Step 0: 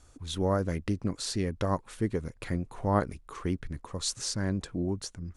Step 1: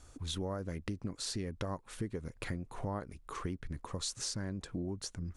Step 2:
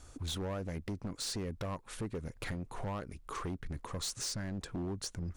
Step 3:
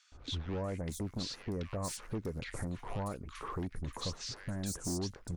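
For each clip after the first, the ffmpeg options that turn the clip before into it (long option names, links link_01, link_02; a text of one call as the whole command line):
ffmpeg -i in.wav -af "acompressor=threshold=-36dB:ratio=6,volume=1dB" out.wav
ffmpeg -i in.wav -af "volume=36dB,asoftclip=hard,volume=-36dB,volume=2.5dB" out.wav
ffmpeg -i in.wav -filter_complex "[0:a]acrossover=split=1600|5700[link_01][link_02][link_03];[link_01]adelay=120[link_04];[link_03]adelay=640[link_05];[link_04][link_02][link_05]amix=inputs=3:normalize=0,volume=1dB" out.wav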